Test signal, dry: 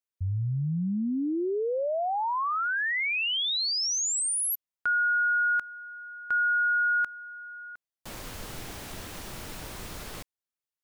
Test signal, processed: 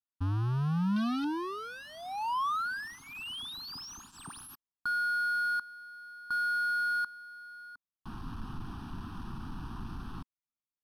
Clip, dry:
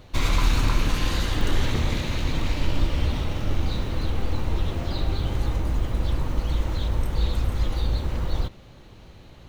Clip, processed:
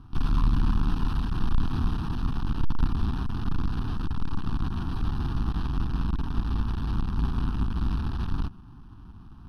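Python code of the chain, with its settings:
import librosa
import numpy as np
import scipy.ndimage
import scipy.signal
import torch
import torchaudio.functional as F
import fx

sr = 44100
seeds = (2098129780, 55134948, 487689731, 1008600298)

p1 = fx.halfwave_hold(x, sr)
p2 = fx.graphic_eq(p1, sr, hz=(250, 500, 1000, 2000, 4000), db=(7, -11, 4, -5, -11))
p3 = (np.mod(10.0 ** (19.0 / 20.0) * p2 + 1.0, 2.0) - 1.0) / 10.0 ** (19.0 / 20.0)
p4 = p2 + (p3 * 10.0 ** (-6.5 / 20.0))
p5 = scipy.signal.sosfilt(scipy.signal.butter(2, 5800.0, 'lowpass', fs=sr, output='sos'), p4)
p6 = fx.fixed_phaser(p5, sr, hz=2100.0, stages=6)
y = p6 * 10.0 ** (-7.5 / 20.0)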